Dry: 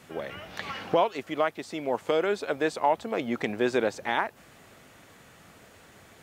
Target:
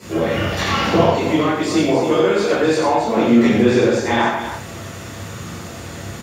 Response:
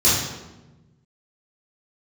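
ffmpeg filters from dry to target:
-filter_complex "[0:a]acompressor=threshold=-33dB:ratio=4,aecho=1:1:90.38|268.2:0.562|0.355[a];[1:a]atrim=start_sample=2205,afade=t=out:st=0.17:d=0.01,atrim=end_sample=7938[b];[a][b]afir=irnorm=-1:irlink=0,volume=-1dB"

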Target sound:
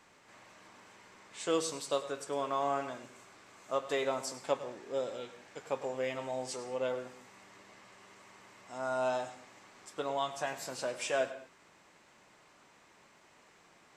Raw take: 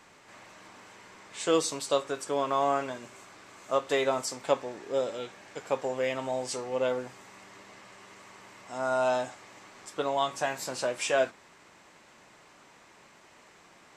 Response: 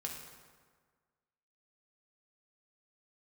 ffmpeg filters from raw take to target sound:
-filter_complex "[0:a]asplit=2[a][b];[1:a]atrim=start_sample=2205,atrim=end_sample=6174,adelay=101[c];[b][c]afir=irnorm=-1:irlink=0,volume=-11.5dB[d];[a][d]amix=inputs=2:normalize=0,volume=-6dB"

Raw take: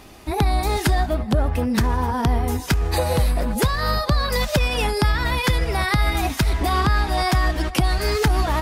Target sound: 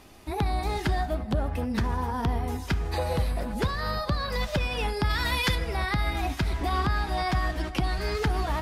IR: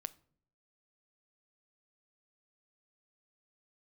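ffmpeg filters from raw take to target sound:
-filter_complex "[0:a]acrossover=split=5100[a][b];[b]acompressor=threshold=-41dB:ratio=4:attack=1:release=60[c];[a][c]amix=inputs=2:normalize=0,asplit=3[d][e][f];[d]afade=t=out:st=5.09:d=0.02[g];[e]highshelf=f=2.6k:g=11,afade=t=in:st=5.09:d=0.02,afade=t=out:st=5.54:d=0.02[h];[f]afade=t=in:st=5.54:d=0.02[i];[g][h][i]amix=inputs=3:normalize=0[j];[1:a]atrim=start_sample=2205,asetrate=27342,aresample=44100[k];[j][k]afir=irnorm=-1:irlink=0,volume=-6.5dB"

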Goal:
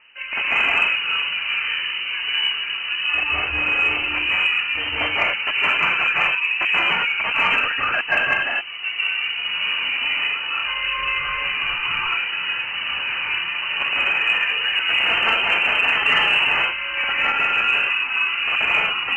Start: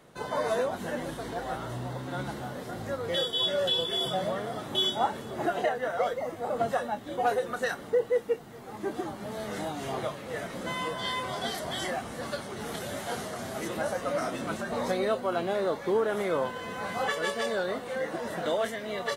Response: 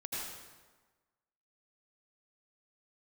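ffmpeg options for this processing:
-filter_complex "[0:a]aeval=exprs='(mod(11.2*val(0)+1,2)-1)/11.2':c=same,lowpass=f=2.6k:t=q:w=0.5098,lowpass=f=2.6k:t=q:w=0.6013,lowpass=f=2.6k:t=q:w=0.9,lowpass=f=2.6k:t=q:w=2.563,afreqshift=-3100[a];[1:a]atrim=start_sample=2205,atrim=end_sample=6615,asetrate=23373,aresample=44100[b];[a][b]afir=irnorm=-1:irlink=0,acontrast=74"

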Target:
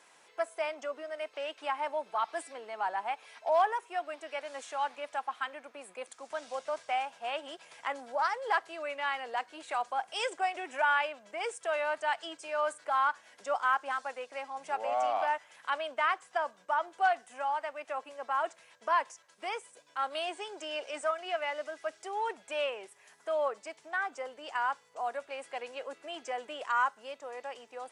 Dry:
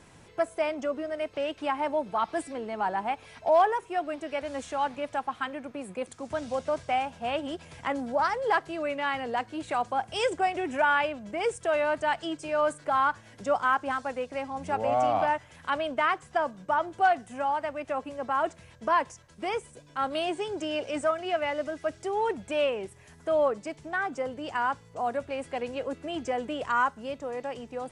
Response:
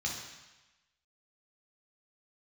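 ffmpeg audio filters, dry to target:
-af "highpass=670,volume=-2.5dB"

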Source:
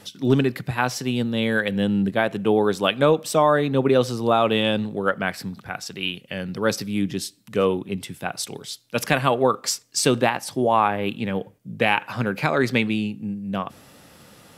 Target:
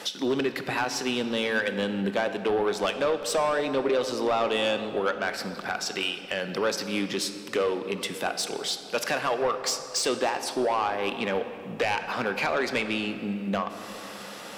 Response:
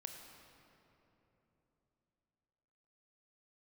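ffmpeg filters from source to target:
-filter_complex "[0:a]highpass=400,acompressor=threshold=-36dB:ratio=2.5,asoftclip=type=tanh:threshold=-29.5dB,asplit=2[a][b];[1:a]atrim=start_sample=2205,lowpass=8.2k[c];[b][c]afir=irnorm=-1:irlink=0,volume=5.5dB[d];[a][d]amix=inputs=2:normalize=0,volume=4.5dB"

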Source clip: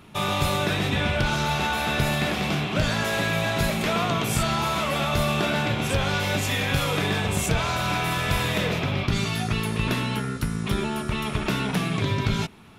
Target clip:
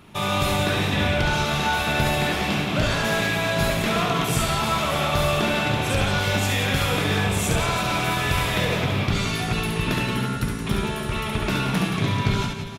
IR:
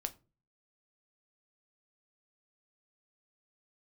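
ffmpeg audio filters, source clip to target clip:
-af "aecho=1:1:70|175|332.5|568.8|923.1:0.631|0.398|0.251|0.158|0.1"

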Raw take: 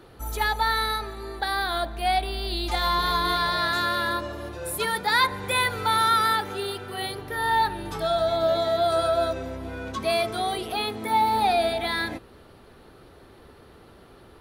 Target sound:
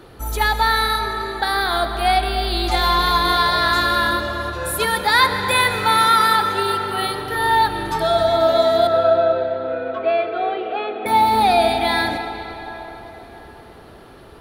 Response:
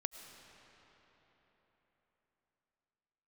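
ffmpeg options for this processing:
-filter_complex "[0:a]asettb=1/sr,asplit=3[a][b][c];[a]atrim=end=8.874[d];[b]atrim=start=8.87:end=11.06,asetpts=PTS-STARTPTS,afade=t=in:d=0.004:c=qsin,afade=t=out:st=2.186:d=0.004:c=qsin,highpass=f=330:w=0.5412,highpass=f=330:w=1.3066,equalizer=f=520:t=q:w=4:g=5,equalizer=f=1k:t=q:w=4:g=-10,equalizer=f=2.1k:t=q:w=4:g=-5,lowpass=f=2.4k:w=0.5412,lowpass=f=2.4k:w=1.3066[e];[c]atrim=start=11.056[f];[d][e]acrossfade=d=0.004:c1=hsin:c2=qsin[g];[g][f]acrossfade=d=0.004:c1=qsin:c2=hsin[h];[1:a]atrim=start_sample=2205[i];[h][i]afir=irnorm=-1:irlink=0,volume=8dB"

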